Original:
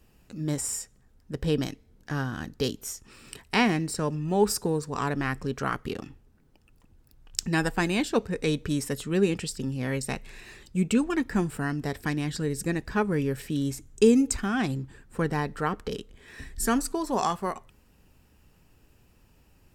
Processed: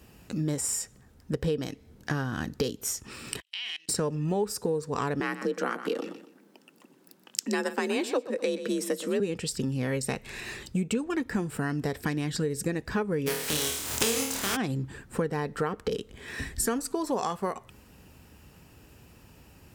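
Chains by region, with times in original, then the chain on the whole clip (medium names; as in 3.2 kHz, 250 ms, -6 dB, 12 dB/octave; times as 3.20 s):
3.40–3.89 s: band-pass filter 3.1 kHz, Q 7.5 + tilt EQ +4 dB/octave + level held to a coarse grid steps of 22 dB
5.20–9.20 s: high-pass 160 Hz 24 dB/octave + frequency shift +47 Hz + feedback delay 123 ms, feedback 26%, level -14 dB
13.26–14.55 s: spectral contrast reduction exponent 0.31 + upward compressor, threshold -30 dBFS + flutter echo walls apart 4.5 m, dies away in 0.45 s
whole clip: high-pass 62 Hz; dynamic bell 480 Hz, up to +8 dB, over -44 dBFS, Q 4.4; compression 6:1, threshold -35 dBFS; trim +8.5 dB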